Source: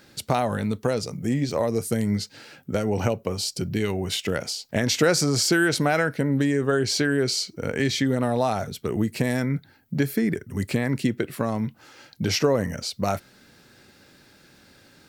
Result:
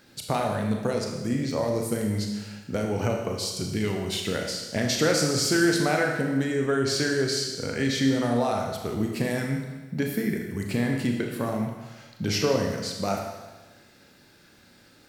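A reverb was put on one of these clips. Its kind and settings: Schroeder reverb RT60 1.2 s, combs from 26 ms, DRR 1.5 dB; gain -4 dB

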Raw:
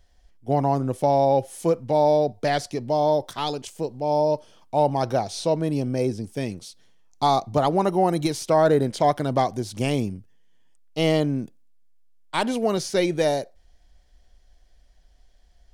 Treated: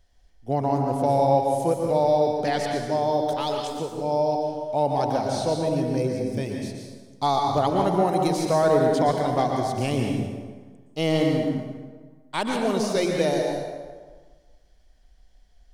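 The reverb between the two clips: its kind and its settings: plate-style reverb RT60 1.5 s, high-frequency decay 0.65×, pre-delay 0.105 s, DRR 1 dB; gain -3 dB

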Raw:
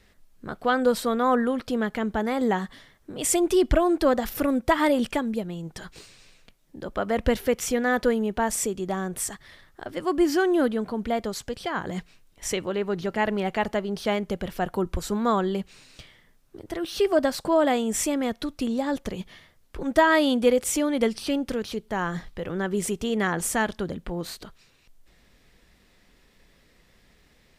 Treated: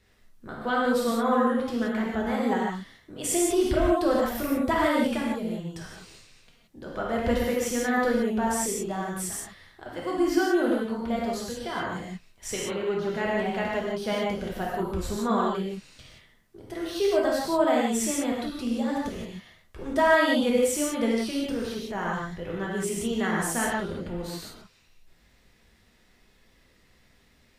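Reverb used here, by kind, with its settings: non-linear reverb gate 0.2 s flat, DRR -4.5 dB; gain -7 dB

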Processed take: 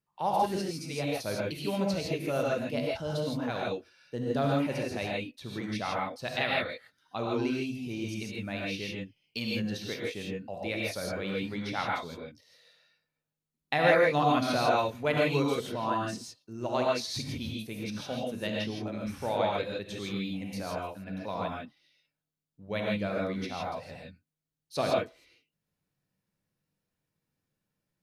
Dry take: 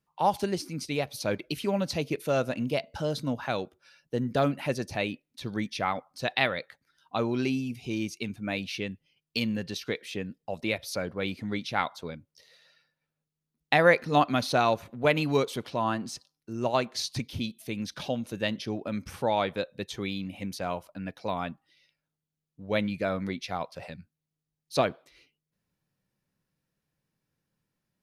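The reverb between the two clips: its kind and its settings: non-linear reverb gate 0.18 s rising, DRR -3 dB; gain -6.5 dB

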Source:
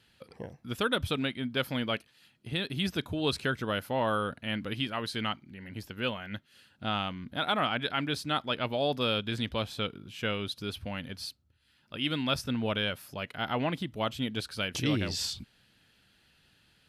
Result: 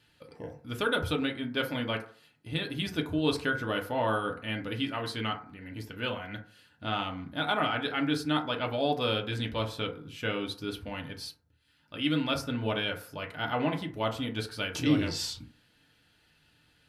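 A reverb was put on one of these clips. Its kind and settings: FDN reverb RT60 0.47 s, low-frequency decay 0.8×, high-frequency decay 0.35×, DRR 1.5 dB; gain -2 dB

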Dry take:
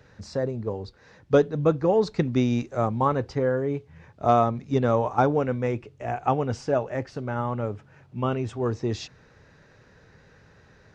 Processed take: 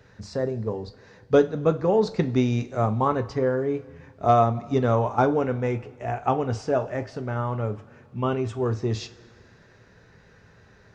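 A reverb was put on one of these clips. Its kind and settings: two-slope reverb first 0.27 s, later 2 s, from -18 dB, DRR 8 dB

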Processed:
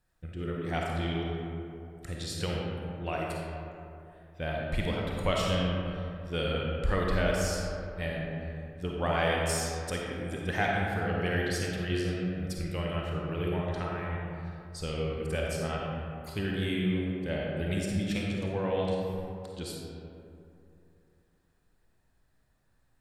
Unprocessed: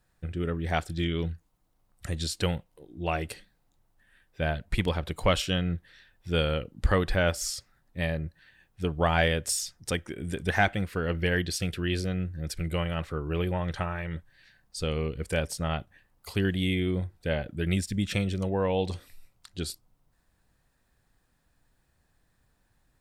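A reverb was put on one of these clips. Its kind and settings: digital reverb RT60 2.8 s, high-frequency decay 0.4×, pre-delay 10 ms, DRR -2.5 dB; gain -6.5 dB

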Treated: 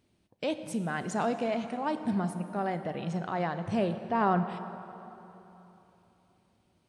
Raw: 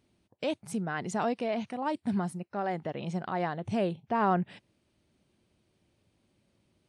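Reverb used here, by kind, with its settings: plate-style reverb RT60 3.3 s, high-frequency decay 0.65×, DRR 9 dB

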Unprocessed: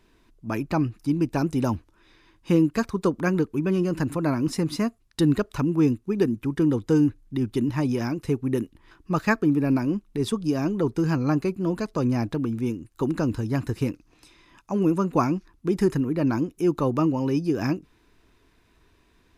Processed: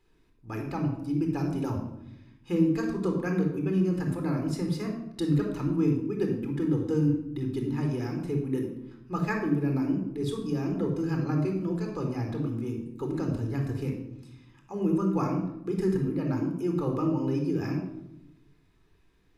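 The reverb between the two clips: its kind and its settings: shoebox room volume 2600 m³, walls furnished, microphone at 4 m; gain -11 dB

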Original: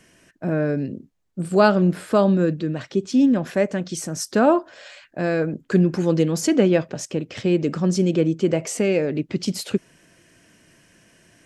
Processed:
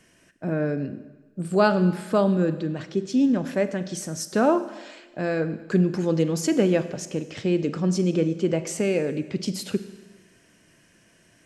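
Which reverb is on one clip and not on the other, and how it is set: Schroeder reverb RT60 1.2 s, combs from 33 ms, DRR 12 dB; gain -3.5 dB

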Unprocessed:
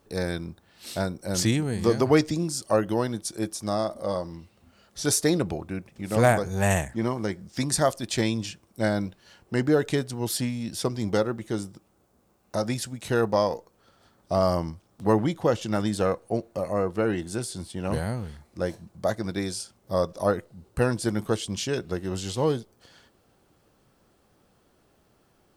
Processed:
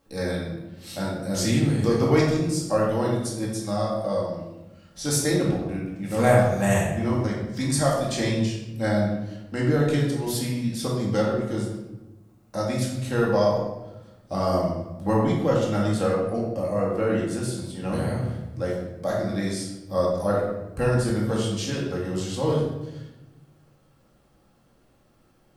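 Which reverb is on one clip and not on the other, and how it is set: shoebox room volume 440 m³, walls mixed, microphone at 2.2 m; gain -5 dB

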